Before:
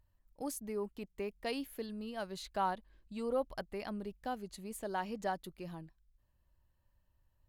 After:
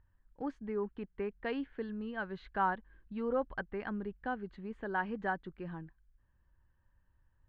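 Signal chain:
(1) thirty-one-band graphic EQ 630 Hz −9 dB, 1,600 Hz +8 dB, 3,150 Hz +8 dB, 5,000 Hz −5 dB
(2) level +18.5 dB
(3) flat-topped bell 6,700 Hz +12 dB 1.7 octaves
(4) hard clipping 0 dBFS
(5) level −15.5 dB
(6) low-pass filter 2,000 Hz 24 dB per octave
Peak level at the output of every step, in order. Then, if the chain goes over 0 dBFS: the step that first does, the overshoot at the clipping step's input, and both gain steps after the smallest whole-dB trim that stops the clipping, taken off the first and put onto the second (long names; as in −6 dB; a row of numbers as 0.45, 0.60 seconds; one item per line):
−22.5, −4.0, −1.5, −1.5, −17.0, −19.5 dBFS
no step passes full scale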